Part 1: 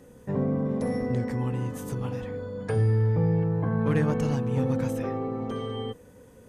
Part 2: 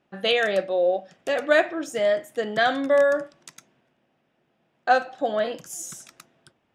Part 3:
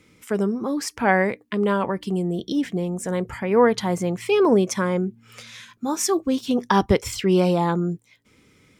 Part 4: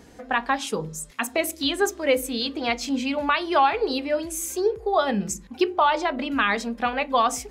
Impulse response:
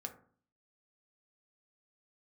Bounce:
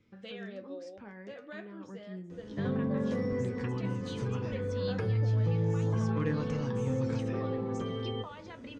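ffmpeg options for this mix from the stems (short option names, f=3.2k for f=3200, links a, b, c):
-filter_complex "[0:a]adelay=2300,volume=2.5dB,asplit=2[a][b];[b]volume=-9.5dB[c];[1:a]volume=-12dB,asplit=2[d][e];[e]volume=-12dB[f];[2:a]acompressor=threshold=-22dB:ratio=6,volume=-16dB,asplit=2[g][h];[h]volume=-6.5dB[i];[3:a]acompressor=threshold=-32dB:ratio=6,adelay=2450,volume=-8dB,asplit=2[j][k];[k]volume=-7dB[l];[a][j]amix=inputs=2:normalize=0,alimiter=limit=-22dB:level=0:latency=1:release=355,volume=0dB[m];[d][g]amix=inputs=2:normalize=0,lowshelf=f=440:g=11,acompressor=threshold=-46dB:ratio=2.5,volume=0dB[n];[4:a]atrim=start_sample=2205[o];[c][f][i][l]amix=inputs=4:normalize=0[p];[p][o]afir=irnorm=-1:irlink=0[q];[m][n][q]amix=inputs=3:normalize=0,lowpass=f=6k:w=0.5412,lowpass=f=6k:w=1.3066,equalizer=f=720:w=4.4:g=-8,flanger=delay=8.8:depth=2:regen=53:speed=0.69:shape=triangular"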